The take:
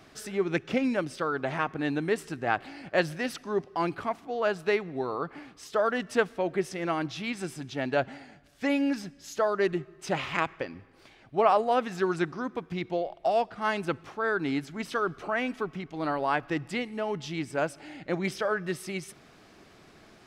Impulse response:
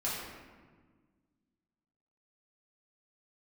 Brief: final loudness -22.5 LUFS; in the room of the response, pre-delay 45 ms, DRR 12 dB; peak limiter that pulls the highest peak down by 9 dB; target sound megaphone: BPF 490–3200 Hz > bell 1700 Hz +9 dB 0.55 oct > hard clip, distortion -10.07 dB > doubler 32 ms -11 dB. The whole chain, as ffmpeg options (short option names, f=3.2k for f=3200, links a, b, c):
-filter_complex "[0:a]alimiter=limit=-19.5dB:level=0:latency=1,asplit=2[a][b];[1:a]atrim=start_sample=2205,adelay=45[c];[b][c]afir=irnorm=-1:irlink=0,volume=-17.5dB[d];[a][d]amix=inputs=2:normalize=0,highpass=490,lowpass=3.2k,equalizer=f=1.7k:t=o:w=0.55:g=9,asoftclip=type=hard:threshold=-26.5dB,asplit=2[e][f];[f]adelay=32,volume=-11dB[g];[e][g]amix=inputs=2:normalize=0,volume=11dB"